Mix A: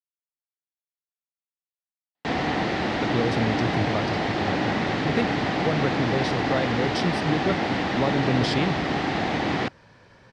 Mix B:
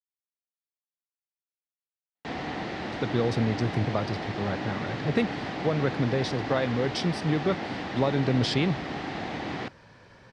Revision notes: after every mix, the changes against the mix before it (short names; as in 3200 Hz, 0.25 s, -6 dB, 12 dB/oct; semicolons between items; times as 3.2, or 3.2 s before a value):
background -8.5 dB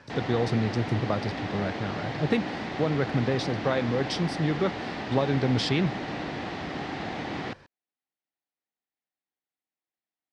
speech: entry -2.85 s; background: entry -2.15 s